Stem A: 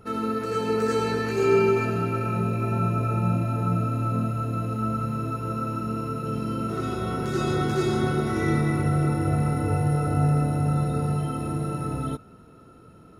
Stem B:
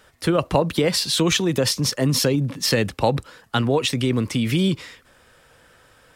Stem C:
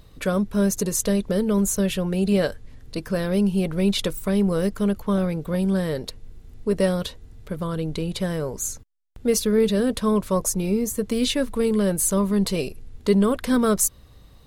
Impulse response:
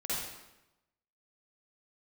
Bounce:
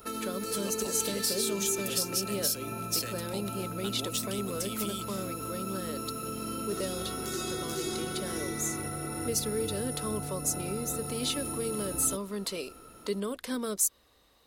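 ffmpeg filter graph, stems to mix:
-filter_complex "[0:a]volume=0.5dB[a];[1:a]highshelf=f=5.2k:g=7,adelay=300,volume=-11.5dB[b];[2:a]highpass=f=290:p=1,volume=-5dB[c];[a][b]amix=inputs=2:normalize=0,aemphasis=mode=production:type=75kf,acompressor=threshold=-27dB:ratio=4,volume=0dB[d];[c][d]amix=inputs=2:normalize=0,equalizer=f=130:w=1:g=-13,acrossover=split=390|3000[e][f][g];[f]acompressor=threshold=-39dB:ratio=6[h];[e][h][g]amix=inputs=3:normalize=0"

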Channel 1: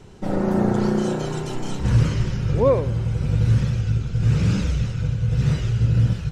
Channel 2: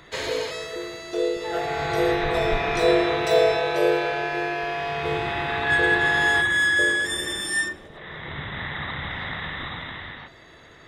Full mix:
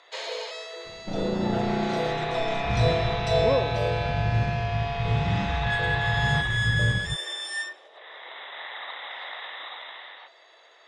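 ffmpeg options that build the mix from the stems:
-filter_complex "[0:a]adelay=850,volume=-7dB[a];[1:a]highpass=f=590:w=0.5412,highpass=f=590:w=1.3066,equalizer=f=1.6k:t=o:w=1.5:g=-8.5,volume=1dB[b];[a][b]amix=inputs=2:normalize=0,lowpass=5k"

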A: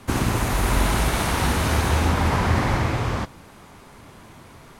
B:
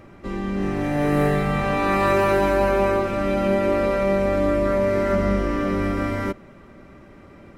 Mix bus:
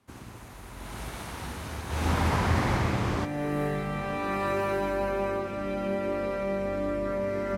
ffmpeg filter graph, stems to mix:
-filter_complex "[0:a]volume=-4.5dB,afade=t=in:st=0.75:d=0.29:silence=0.446684,afade=t=in:st=1.87:d=0.26:silence=0.281838[a];[1:a]adelay=2400,volume=-9.5dB[b];[a][b]amix=inputs=2:normalize=0,highpass=45"

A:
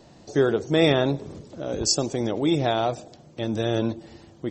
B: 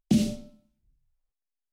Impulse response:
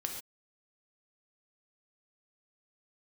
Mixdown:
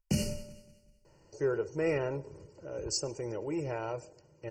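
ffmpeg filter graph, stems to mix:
-filter_complex "[0:a]acontrast=26,adelay=1050,volume=-18dB,asplit=2[a][b];[b]volume=-22dB[c];[1:a]equalizer=f=330:t=o:w=0.77:g=-8,volume=-1.5dB,asplit=2[d][e];[e]volume=-16.5dB[f];[2:a]atrim=start_sample=2205[g];[c][g]afir=irnorm=-1:irlink=0[h];[f]aecho=0:1:188|376|564|752|940:1|0.39|0.152|0.0593|0.0231[i];[a][d][h][i]amix=inputs=4:normalize=0,asuperstop=centerf=3600:order=12:qfactor=2.7,aecho=1:1:2.1:0.71"

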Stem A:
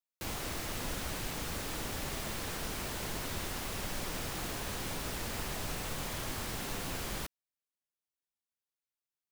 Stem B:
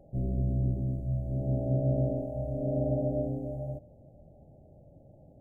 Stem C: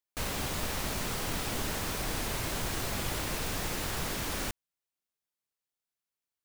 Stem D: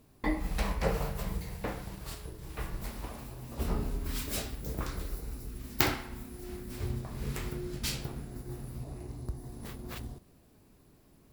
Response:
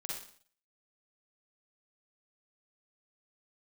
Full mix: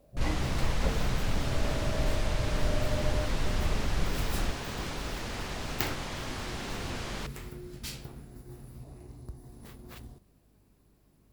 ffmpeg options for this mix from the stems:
-filter_complex "[0:a]lowpass=6k,volume=2dB[a];[1:a]equalizer=f=610:t=o:w=0.77:g=8,volume=-12dB[b];[2:a]aemphasis=mode=reproduction:type=bsi,volume=-5dB[c];[3:a]aeval=exprs='val(0)+0.000891*(sin(2*PI*50*n/s)+sin(2*PI*2*50*n/s)/2+sin(2*PI*3*50*n/s)/3+sin(2*PI*4*50*n/s)/4+sin(2*PI*5*50*n/s)/5)':c=same,volume=-5.5dB[d];[a][b][c][d]amix=inputs=4:normalize=0"

